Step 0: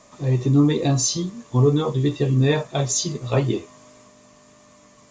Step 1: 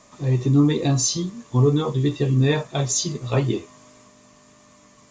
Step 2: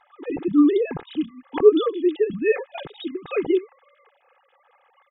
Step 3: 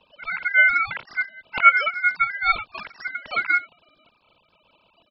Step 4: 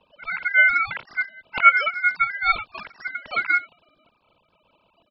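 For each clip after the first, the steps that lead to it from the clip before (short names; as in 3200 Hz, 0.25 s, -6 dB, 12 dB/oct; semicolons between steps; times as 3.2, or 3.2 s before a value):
bell 590 Hz -3 dB 0.77 oct
sine-wave speech; comb 2.4 ms, depth 81%; gain -3 dB
ring modulator 1800 Hz; air absorption 99 m; gain +3 dB
mismatched tape noise reduction decoder only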